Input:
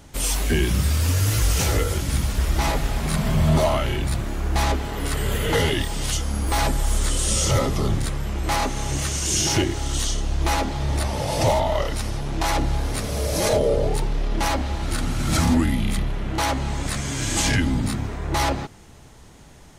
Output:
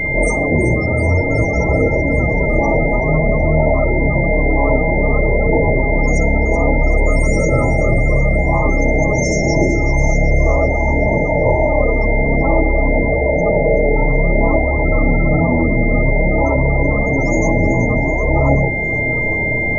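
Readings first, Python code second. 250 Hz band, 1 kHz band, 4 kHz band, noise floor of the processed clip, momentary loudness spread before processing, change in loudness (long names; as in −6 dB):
+8.5 dB, +5.0 dB, −16.0 dB, −17 dBFS, 7 LU, +8.0 dB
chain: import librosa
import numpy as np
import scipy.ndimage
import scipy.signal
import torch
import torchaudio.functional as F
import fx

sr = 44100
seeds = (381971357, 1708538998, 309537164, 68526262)

p1 = fx.bin_compress(x, sr, power=0.4)
p2 = scipy.signal.sosfilt(scipy.signal.ellip(3, 1.0, 40, [1300.0, 4200.0], 'bandstop', fs=sr, output='sos'), p1)
p3 = fx.hum_notches(p2, sr, base_hz=50, count=8)
p4 = fx.dynamic_eq(p3, sr, hz=600.0, q=1.5, threshold_db=-32.0, ratio=4.0, max_db=4)
p5 = fx.chorus_voices(p4, sr, voices=2, hz=0.27, base_ms=29, depth_ms=4.9, mix_pct=50)
p6 = p5 + 10.0 ** (-23.0 / 20.0) * np.sin(2.0 * np.pi * 2100.0 * np.arange(len(p5)) / sr)
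p7 = fx.spec_topn(p6, sr, count=32)
p8 = fx.rider(p7, sr, range_db=10, speed_s=0.5)
p9 = p8 + fx.echo_wet_highpass(p8, sr, ms=379, feedback_pct=52, hz=4100.0, wet_db=-10, dry=0)
p10 = fx.room_shoebox(p9, sr, seeds[0], volume_m3=3000.0, walls='furnished', distance_m=0.49)
y = p10 * librosa.db_to_amplitude(3.5)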